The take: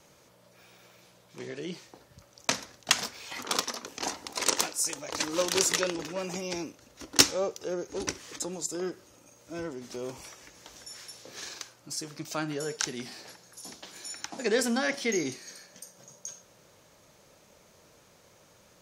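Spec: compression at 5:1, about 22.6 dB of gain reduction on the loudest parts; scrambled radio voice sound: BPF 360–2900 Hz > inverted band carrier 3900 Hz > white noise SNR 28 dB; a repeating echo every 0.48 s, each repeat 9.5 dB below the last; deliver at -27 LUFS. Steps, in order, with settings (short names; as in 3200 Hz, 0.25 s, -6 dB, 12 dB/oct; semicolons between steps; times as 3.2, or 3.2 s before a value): compressor 5:1, threshold -45 dBFS; BPF 360–2900 Hz; feedback echo 0.48 s, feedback 33%, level -9.5 dB; inverted band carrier 3900 Hz; white noise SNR 28 dB; gain +23 dB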